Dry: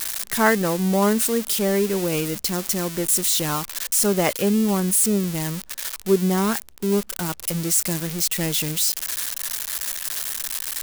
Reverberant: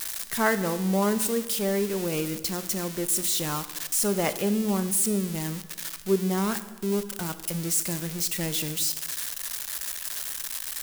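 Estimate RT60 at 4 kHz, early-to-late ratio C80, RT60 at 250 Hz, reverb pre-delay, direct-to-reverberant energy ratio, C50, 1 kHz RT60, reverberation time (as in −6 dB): 1.0 s, 15.0 dB, 1.3 s, 25 ms, 11.5 dB, 13.5 dB, 1.1 s, 1.2 s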